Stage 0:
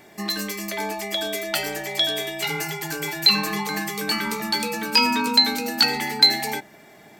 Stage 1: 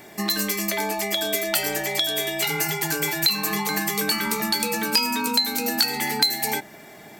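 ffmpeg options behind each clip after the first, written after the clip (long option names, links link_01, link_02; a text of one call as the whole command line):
ffmpeg -i in.wav -filter_complex "[0:a]highshelf=frequency=8800:gain=5.5,acrossover=split=6700[link_01][link_02];[link_01]acompressor=threshold=-26dB:ratio=6[link_03];[link_03][link_02]amix=inputs=2:normalize=0,volume=4dB" out.wav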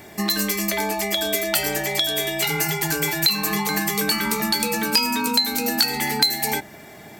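ffmpeg -i in.wav -af "equalizer=frequency=73:width_type=o:width=1.4:gain=10,volume=1.5dB" out.wav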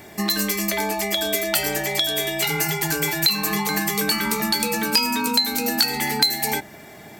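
ffmpeg -i in.wav -af anull out.wav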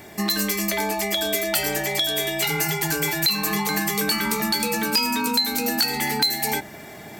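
ffmpeg -i in.wav -af "areverse,acompressor=mode=upward:threshold=-34dB:ratio=2.5,areverse,asoftclip=type=tanh:threshold=-12dB" out.wav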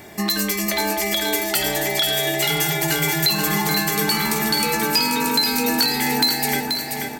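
ffmpeg -i in.wav -af "aecho=1:1:482|964|1446|1928|2410|2892:0.531|0.255|0.122|0.0587|0.0282|0.0135,volume=1.5dB" out.wav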